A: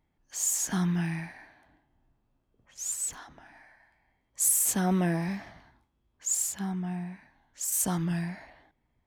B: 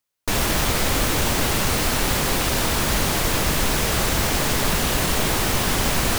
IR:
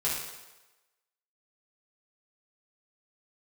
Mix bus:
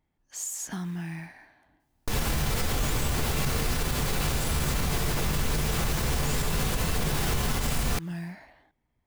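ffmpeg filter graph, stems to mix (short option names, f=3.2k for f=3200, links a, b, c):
-filter_complex "[0:a]acompressor=threshold=-29dB:ratio=6,acrusher=bits=7:mode=log:mix=0:aa=0.000001,volume=-2dB[a];[1:a]lowshelf=f=140:g=10.5,adelay=1800,volume=-7.5dB,asplit=2[b][c];[c]volume=-5dB[d];[2:a]atrim=start_sample=2205[e];[d][e]afir=irnorm=-1:irlink=0[f];[a][b][f]amix=inputs=3:normalize=0,alimiter=limit=-17.5dB:level=0:latency=1:release=121"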